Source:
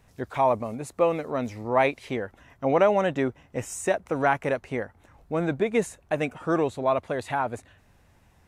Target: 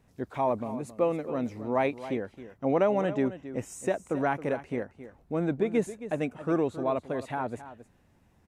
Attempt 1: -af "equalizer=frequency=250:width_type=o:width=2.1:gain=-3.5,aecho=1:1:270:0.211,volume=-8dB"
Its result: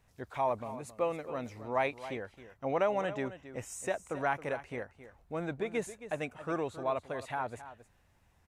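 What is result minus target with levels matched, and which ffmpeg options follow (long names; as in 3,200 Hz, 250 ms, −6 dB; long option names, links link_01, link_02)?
250 Hz band −5.0 dB
-af "equalizer=frequency=250:width_type=o:width=2.1:gain=8,aecho=1:1:270:0.211,volume=-8dB"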